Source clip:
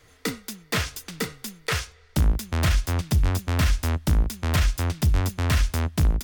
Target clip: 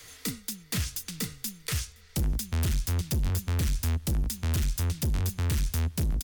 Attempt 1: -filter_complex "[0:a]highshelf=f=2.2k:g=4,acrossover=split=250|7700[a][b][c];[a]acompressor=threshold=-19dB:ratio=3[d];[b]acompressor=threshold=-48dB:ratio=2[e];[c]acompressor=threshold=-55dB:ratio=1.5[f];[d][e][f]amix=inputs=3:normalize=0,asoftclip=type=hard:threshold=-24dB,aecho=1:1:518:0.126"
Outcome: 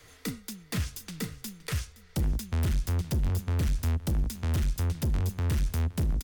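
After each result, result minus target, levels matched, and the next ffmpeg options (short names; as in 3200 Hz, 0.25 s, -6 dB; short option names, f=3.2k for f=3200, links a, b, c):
echo-to-direct +9.5 dB; 4000 Hz band -4.0 dB
-filter_complex "[0:a]highshelf=f=2.2k:g=4,acrossover=split=250|7700[a][b][c];[a]acompressor=threshold=-19dB:ratio=3[d];[b]acompressor=threshold=-48dB:ratio=2[e];[c]acompressor=threshold=-55dB:ratio=1.5[f];[d][e][f]amix=inputs=3:normalize=0,asoftclip=type=hard:threshold=-24dB,aecho=1:1:518:0.0422"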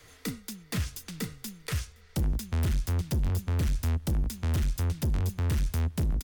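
4000 Hz band -4.0 dB
-filter_complex "[0:a]highshelf=f=2.2k:g=16,acrossover=split=250|7700[a][b][c];[a]acompressor=threshold=-19dB:ratio=3[d];[b]acompressor=threshold=-48dB:ratio=2[e];[c]acompressor=threshold=-55dB:ratio=1.5[f];[d][e][f]amix=inputs=3:normalize=0,asoftclip=type=hard:threshold=-24dB,aecho=1:1:518:0.0422"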